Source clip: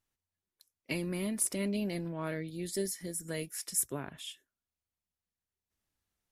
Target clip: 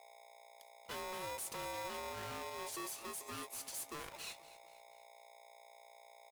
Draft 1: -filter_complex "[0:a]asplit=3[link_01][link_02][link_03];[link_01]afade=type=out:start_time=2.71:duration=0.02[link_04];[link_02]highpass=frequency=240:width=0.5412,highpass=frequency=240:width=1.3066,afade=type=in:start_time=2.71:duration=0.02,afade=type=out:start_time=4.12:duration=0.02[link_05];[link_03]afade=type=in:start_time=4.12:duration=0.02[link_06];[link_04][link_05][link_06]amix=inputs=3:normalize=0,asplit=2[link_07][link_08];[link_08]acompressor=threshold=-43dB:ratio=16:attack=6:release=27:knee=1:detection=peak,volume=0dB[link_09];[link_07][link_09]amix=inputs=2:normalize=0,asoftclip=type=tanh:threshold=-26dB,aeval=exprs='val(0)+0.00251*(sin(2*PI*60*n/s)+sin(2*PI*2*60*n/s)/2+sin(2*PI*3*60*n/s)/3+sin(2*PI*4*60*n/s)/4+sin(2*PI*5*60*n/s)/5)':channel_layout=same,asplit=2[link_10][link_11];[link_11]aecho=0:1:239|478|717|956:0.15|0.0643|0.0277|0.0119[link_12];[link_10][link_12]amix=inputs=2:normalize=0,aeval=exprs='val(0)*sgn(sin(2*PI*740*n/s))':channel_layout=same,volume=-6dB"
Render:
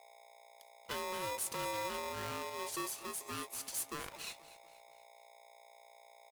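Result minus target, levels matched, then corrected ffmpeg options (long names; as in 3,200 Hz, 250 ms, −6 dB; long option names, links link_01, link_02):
soft clipping: distortion −8 dB
-filter_complex "[0:a]asplit=3[link_01][link_02][link_03];[link_01]afade=type=out:start_time=2.71:duration=0.02[link_04];[link_02]highpass=frequency=240:width=0.5412,highpass=frequency=240:width=1.3066,afade=type=in:start_time=2.71:duration=0.02,afade=type=out:start_time=4.12:duration=0.02[link_05];[link_03]afade=type=in:start_time=4.12:duration=0.02[link_06];[link_04][link_05][link_06]amix=inputs=3:normalize=0,asplit=2[link_07][link_08];[link_08]acompressor=threshold=-43dB:ratio=16:attack=6:release=27:knee=1:detection=peak,volume=0dB[link_09];[link_07][link_09]amix=inputs=2:normalize=0,asoftclip=type=tanh:threshold=-35dB,aeval=exprs='val(0)+0.00251*(sin(2*PI*60*n/s)+sin(2*PI*2*60*n/s)/2+sin(2*PI*3*60*n/s)/3+sin(2*PI*4*60*n/s)/4+sin(2*PI*5*60*n/s)/5)':channel_layout=same,asplit=2[link_10][link_11];[link_11]aecho=0:1:239|478|717|956:0.15|0.0643|0.0277|0.0119[link_12];[link_10][link_12]amix=inputs=2:normalize=0,aeval=exprs='val(0)*sgn(sin(2*PI*740*n/s))':channel_layout=same,volume=-6dB"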